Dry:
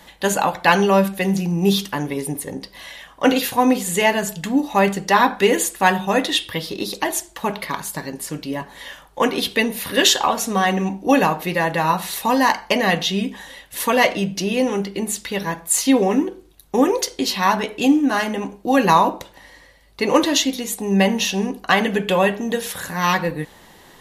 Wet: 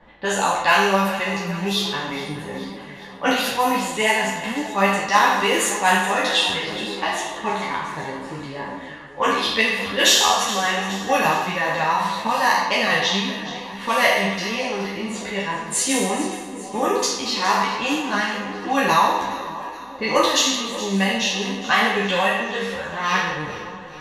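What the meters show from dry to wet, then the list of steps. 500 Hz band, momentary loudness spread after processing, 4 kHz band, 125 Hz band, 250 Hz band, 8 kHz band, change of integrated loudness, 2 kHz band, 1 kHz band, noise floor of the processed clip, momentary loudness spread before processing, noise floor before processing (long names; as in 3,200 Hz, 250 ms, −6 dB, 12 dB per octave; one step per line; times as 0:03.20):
−3.5 dB, 13 LU, +2.0 dB, −5.5 dB, −6.5 dB, −0.5 dB, −1.0 dB, +2.0 dB, 0.0 dB, −36 dBFS, 11 LU, −48 dBFS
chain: peak hold with a decay on every bin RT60 1.17 s
low-pass that shuts in the quiet parts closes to 1,500 Hz, open at −8 dBFS
dynamic equaliser 280 Hz, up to −8 dB, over −28 dBFS, Q 0.72
on a send: echo with a time of its own for lows and highs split 1,100 Hz, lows 583 ms, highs 418 ms, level −14 dB
on the sum: string-ensemble chorus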